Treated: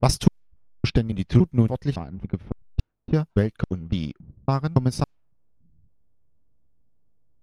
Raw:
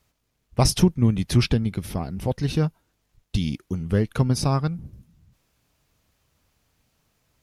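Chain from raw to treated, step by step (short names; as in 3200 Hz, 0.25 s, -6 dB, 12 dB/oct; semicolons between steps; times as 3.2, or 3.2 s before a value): slices in reverse order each 0.28 s, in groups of 3; in parallel at -5.5 dB: backlash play -26 dBFS; on the sum: low-pass opened by the level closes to 500 Hz, open at -14.5 dBFS; transient shaper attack +6 dB, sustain -3 dB; gain -6.5 dB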